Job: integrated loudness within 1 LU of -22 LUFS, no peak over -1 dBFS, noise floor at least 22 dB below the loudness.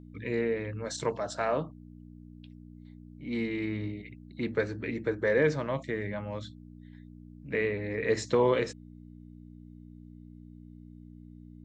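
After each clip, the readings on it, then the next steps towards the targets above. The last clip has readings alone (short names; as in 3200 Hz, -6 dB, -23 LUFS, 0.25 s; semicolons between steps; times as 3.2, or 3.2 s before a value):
hum 60 Hz; harmonics up to 300 Hz; hum level -46 dBFS; loudness -31.0 LUFS; peak -13.5 dBFS; loudness target -22.0 LUFS
-> de-hum 60 Hz, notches 5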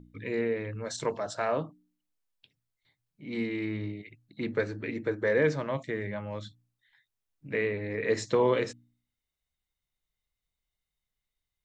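hum none; loudness -31.0 LUFS; peak -13.5 dBFS; loudness target -22.0 LUFS
-> gain +9 dB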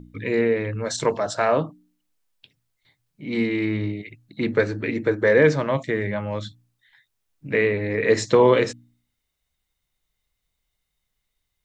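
loudness -22.0 LUFS; peak -4.5 dBFS; noise floor -79 dBFS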